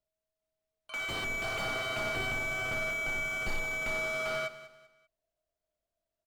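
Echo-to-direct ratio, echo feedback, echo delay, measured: -14.5 dB, 33%, 195 ms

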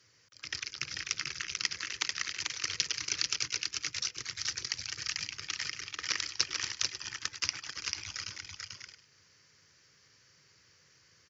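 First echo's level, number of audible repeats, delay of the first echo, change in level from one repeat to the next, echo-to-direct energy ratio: -19.5 dB, 3, 404 ms, no regular repeats, -3.0 dB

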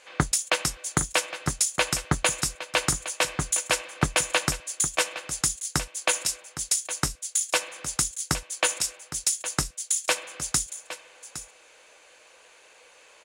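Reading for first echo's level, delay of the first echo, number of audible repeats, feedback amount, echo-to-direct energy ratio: -13.0 dB, 812 ms, 1, no regular repeats, -13.0 dB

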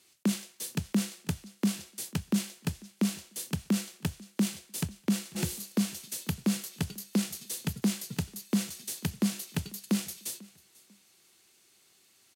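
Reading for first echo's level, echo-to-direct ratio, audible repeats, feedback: -23.0 dB, -22.5 dB, 2, 28%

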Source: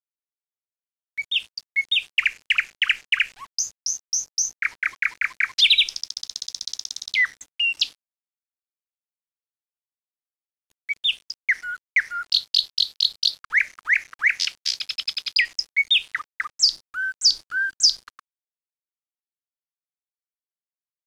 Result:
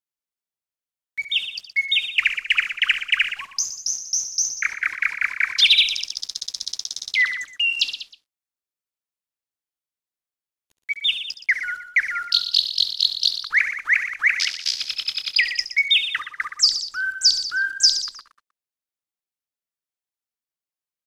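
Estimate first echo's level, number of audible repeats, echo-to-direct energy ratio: -12.0 dB, 4, -7.5 dB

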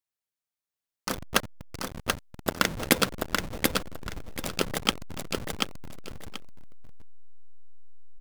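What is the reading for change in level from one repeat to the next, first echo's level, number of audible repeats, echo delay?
-12.5 dB, -3.5 dB, 2, 734 ms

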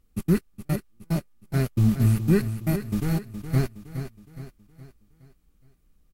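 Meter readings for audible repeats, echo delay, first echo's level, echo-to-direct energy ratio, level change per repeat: 4, 417 ms, -10.0 dB, -9.0 dB, -7.0 dB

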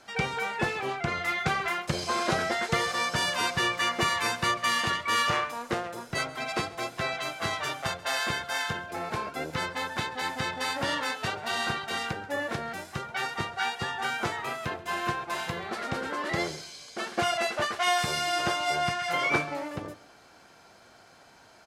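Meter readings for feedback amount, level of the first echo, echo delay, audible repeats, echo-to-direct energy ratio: 28%, -19.0 dB, 134 ms, 2, -18.5 dB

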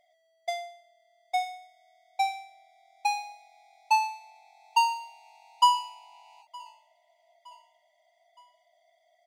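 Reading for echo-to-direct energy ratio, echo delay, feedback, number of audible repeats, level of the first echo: -23.0 dB, 916 ms, 48%, 2, -24.0 dB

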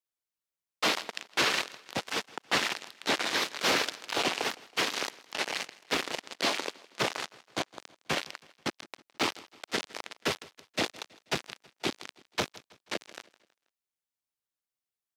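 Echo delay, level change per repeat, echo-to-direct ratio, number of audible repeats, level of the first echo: 161 ms, -6.5 dB, -20.5 dB, 3, -21.5 dB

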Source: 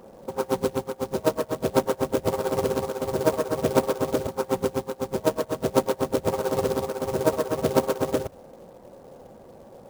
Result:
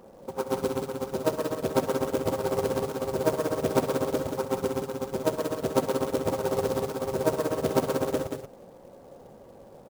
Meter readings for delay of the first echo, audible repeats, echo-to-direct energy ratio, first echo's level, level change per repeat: 67 ms, 2, -5.5 dB, -15.5 dB, no regular repeats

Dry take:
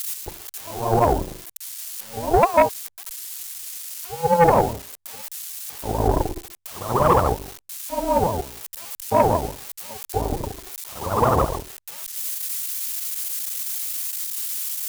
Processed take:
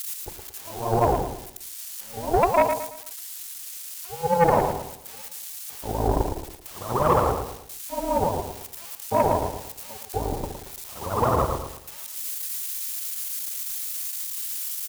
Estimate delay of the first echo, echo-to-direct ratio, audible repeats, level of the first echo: 112 ms, -6.5 dB, 4, -7.0 dB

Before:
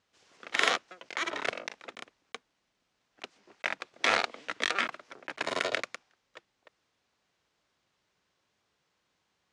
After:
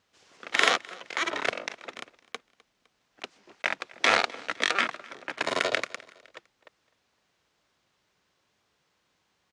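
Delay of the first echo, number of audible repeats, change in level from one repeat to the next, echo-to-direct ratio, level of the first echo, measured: 255 ms, 2, -5.5 dB, -22.0 dB, -23.0 dB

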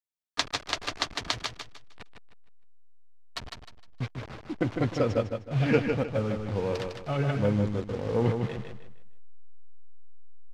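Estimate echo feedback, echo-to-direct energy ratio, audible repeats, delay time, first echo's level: 32%, -5.0 dB, 3, 154 ms, -5.5 dB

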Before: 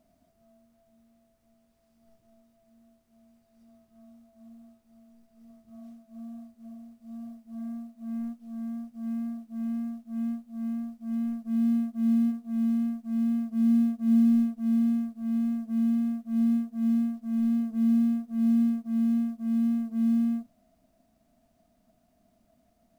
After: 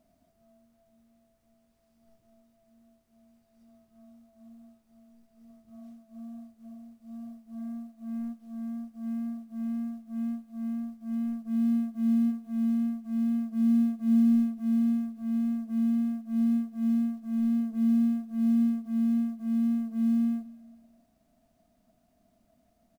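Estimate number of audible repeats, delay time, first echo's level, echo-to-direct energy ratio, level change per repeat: 3, 217 ms, -22.0 dB, -21.0 dB, -6.0 dB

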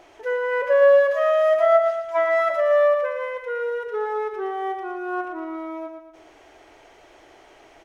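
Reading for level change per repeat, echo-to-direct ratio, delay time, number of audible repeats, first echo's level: -6.5 dB, -5.5 dB, 116 ms, 4, -6.5 dB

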